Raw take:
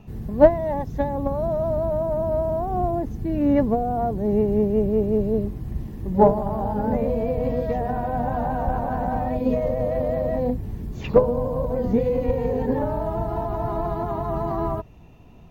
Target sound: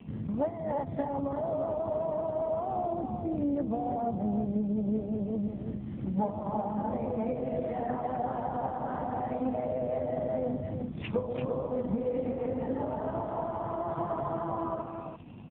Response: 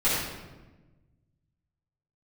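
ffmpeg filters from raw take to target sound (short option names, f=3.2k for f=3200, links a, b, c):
-filter_complex "[0:a]asplit=3[a][b][c];[a]afade=t=out:st=2.93:d=0.02[d];[b]lowpass=f=1.1k:p=1,afade=t=in:st=2.93:d=0.02,afade=t=out:st=5:d=0.02[e];[c]afade=t=in:st=5:d=0.02[f];[d][e][f]amix=inputs=3:normalize=0,equalizer=f=410:w=5.5:g=-11,bandreject=f=60:t=h:w=6,bandreject=f=120:t=h:w=6,bandreject=f=180:t=h:w=6,bandreject=f=240:t=h:w=6,bandreject=f=300:t=h:w=6,bandreject=f=360:t=h:w=6,acompressor=threshold=-31dB:ratio=8,aeval=exprs='val(0)+0.00631*(sin(2*PI*50*n/s)+sin(2*PI*2*50*n/s)/2+sin(2*PI*3*50*n/s)/3+sin(2*PI*4*50*n/s)/4+sin(2*PI*5*50*n/s)/5)':c=same,aecho=1:1:343:0.473,volume=3.5dB" -ar 8000 -c:a libopencore_amrnb -b:a 5150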